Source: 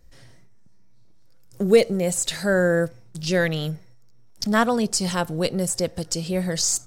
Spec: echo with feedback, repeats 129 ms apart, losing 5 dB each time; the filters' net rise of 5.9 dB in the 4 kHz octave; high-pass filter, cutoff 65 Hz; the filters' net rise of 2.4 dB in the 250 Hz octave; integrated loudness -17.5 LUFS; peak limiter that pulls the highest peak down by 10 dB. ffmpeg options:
-af "highpass=65,equalizer=f=250:t=o:g=3.5,equalizer=f=4000:t=o:g=7.5,alimiter=limit=0.224:level=0:latency=1,aecho=1:1:129|258|387|516|645|774|903:0.562|0.315|0.176|0.0988|0.0553|0.031|0.0173,volume=1.68"

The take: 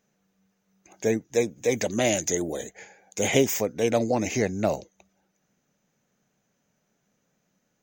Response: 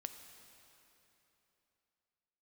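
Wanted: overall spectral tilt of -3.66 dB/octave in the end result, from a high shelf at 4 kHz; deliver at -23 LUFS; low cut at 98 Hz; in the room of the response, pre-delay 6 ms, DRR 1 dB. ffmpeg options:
-filter_complex "[0:a]highpass=98,highshelf=f=4000:g=4,asplit=2[s0][s1];[1:a]atrim=start_sample=2205,adelay=6[s2];[s1][s2]afir=irnorm=-1:irlink=0,volume=1.33[s3];[s0][s3]amix=inputs=2:normalize=0"

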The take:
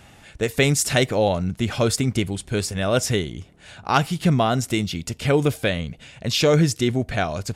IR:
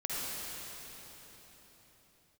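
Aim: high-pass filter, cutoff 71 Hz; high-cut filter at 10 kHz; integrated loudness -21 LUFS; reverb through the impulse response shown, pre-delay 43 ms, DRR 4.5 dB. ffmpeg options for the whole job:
-filter_complex "[0:a]highpass=71,lowpass=10000,asplit=2[s0][s1];[1:a]atrim=start_sample=2205,adelay=43[s2];[s1][s2]afir=irnorm=-1:irlink=0,volume=0.316[s3];[s0][s3]amix=inputs=2:normalize=0,volume=0.944"

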